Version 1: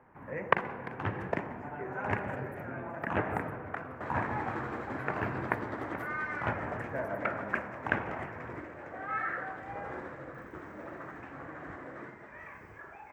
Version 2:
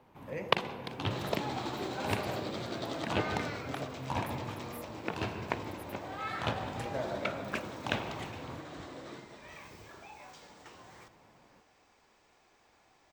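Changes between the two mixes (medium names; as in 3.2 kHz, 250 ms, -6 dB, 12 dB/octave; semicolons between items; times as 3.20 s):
speech: entry -1.25 s; second sound: entry -2.90 s; master: add resonant high shelf 2.6 kHz +14 dB, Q 3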